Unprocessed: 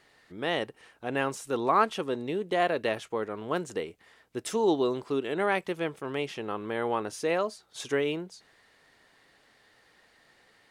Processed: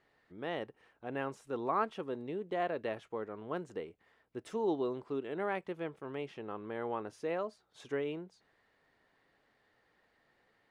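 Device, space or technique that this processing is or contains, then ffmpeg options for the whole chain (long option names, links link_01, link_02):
through cloth: -af "highshelf=frequency=3500:gain=-15,volume=-7.5dB"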